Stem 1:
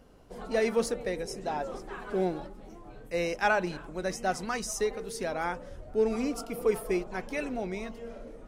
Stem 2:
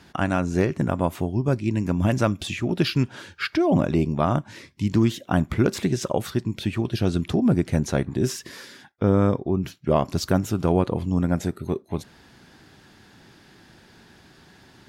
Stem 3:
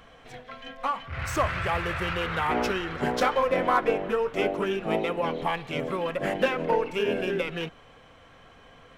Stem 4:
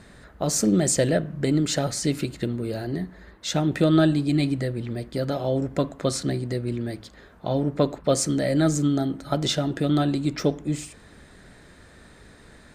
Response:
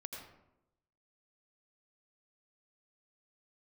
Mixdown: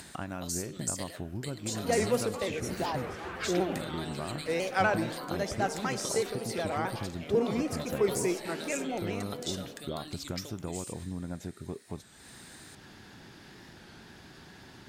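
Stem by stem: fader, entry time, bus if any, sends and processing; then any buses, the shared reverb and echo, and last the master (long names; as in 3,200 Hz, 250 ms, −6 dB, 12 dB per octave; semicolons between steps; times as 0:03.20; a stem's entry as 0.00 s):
−3.0 dB, 1.35 s, send −7 dB, high-pass filter 150 Hz 24 dB per octave; pitch modulation by a square or saw wave square 4 Hz, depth 100 cents
−9.5 dB, 0.00 s, no send, downward compressor, threshold −24 dBFS, peak gain reduction 10 dB
−12.5 dB, 1.50 s, no send, brickwall limiter −23 dBFS, peak gain reduction 11 dB
+0.5 dB, 0.00 s, no send, first difference; downward compressor 2 to 1, threshold −47 dBFS, peak gain reduction 14.5 dB; transient designer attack +5 dB, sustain +9 dB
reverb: on, RT60 0.90 s, pre-delay 77 ms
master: upward compression, threshold −40 dBFS; wow of a warped record 33 1/3 rpm, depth 100 cents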